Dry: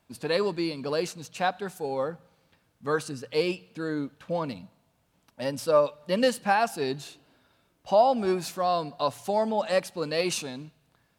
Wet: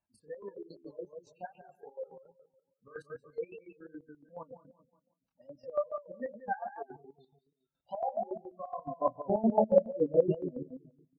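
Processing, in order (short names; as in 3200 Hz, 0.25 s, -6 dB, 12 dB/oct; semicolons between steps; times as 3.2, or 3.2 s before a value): bell 240 Hz -5 dB 2.7 oct, from 8.86 s +11 dB; feedback echo 0.181 s, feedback 35%, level -4 dB; reverb RT60 1.0 s, pre-delay 6 ms, DRR 19 dB; spectral gate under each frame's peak -10 dB strong; chorus 2.5 Hz, depth 6.1 ms; chopper 7.1 Hz, depth 65%, duty 45%; upward expander 1.5:1, over -45 dBFS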